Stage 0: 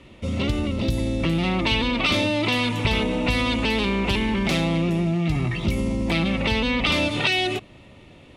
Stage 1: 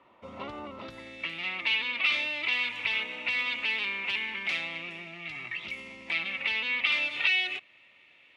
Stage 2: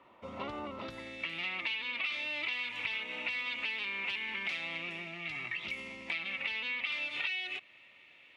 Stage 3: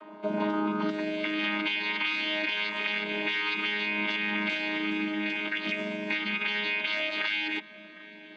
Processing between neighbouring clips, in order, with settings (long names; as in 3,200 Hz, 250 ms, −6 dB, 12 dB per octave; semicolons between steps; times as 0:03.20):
band-pass filter sweep 1,000 Hz → 2,300 Hz, 0:00.71–0:01.22
downward compressor 6 to 1, threshold −33 dBFS, peak gain reduction 11.5 dB
channel vocoder with a chord as carrier bare fifth, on G#3; in parallel at +3 dB: brickwall limiter −30.5 dBFS, peak gain reduction 9 dB; on the sum: feedback echo with a low-pass in the loop 759 ms, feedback 73%, low-pass 900 Hz, level −14.5 dB; level +2 dB